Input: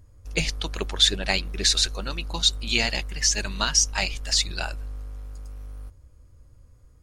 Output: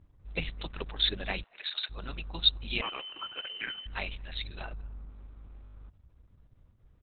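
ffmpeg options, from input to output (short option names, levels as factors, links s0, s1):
-filter_complex "[0:a]asplit=3[s0][s1][s2];[s0]afade=t=out:st=1.42:d=0.02[s3];[s1]highpass=f=700:w=0.5412,highpass=f=700:w=1.3066,afade=t=in:st=1.42:d=0.02,afade=t=out:st=1.89:d=0.02[s4];[s2]afade=t=in:st=1.89:d=0.02[s5];[s3][s4][s5]amix=inputs=3:normalize=0,asettb=1/sr,asplit=3[s6][s7][s8];[s6]atrim=end=2.814[s9];[s7]atrim=start=2.81:end=3.86,asetpts=PTS-STARTPTS,afade=t=in:d=0.004:c=qsin,afade=t=out:st=1.046:d=0.004:c=qsin,lowpass=f=2600:t=q:w=0.5098,lowpass=f=2600:t=q:w=0.6013,lowpass=f=2600:t=q:w=0.9,lowpass=f=2600:t=q:w=2.563,afreqshift=-3100[s10];[s8]atrim=start=3.856[s11];[s9][s10]acrossfade=d=0.004:c1=hsin:c2=qsin[s12];[s12][s11]acrossfade=d=0.004:c1=qsin:c2=hsin,asettb=1/sr,asplit=3[s13][s14][s15];[s13]atrim=end=4.614[s16];[s14]atrim=start=4.61:end=5.09,asetpts=PTS-STARTPTS,afade=t=in:d=0.004:c=qsin,afade=t=out:st=0.476:d=0.004:c=qsin,aemphasis=mode=reproduction:type=75fm[s17];[s15]atrim=start=5.086[s18];[s16][s17]acrossfade=d=0.004:c1=hsin:c2=qsin[s19];[s19][s18]acrossfade=d=0.004:c1=qsin:c2=hsin,asplit=2[s20][s21];[s21]adelay=220,highpass=300,lowpass=3400,asoftclip=type=hard:threshold=0.224,volume=0.0447[s22];[s20][s22]amix=inputs=2:normalize=0,volume=0.447" -ar 48000 -c:a libopus -b:a 6k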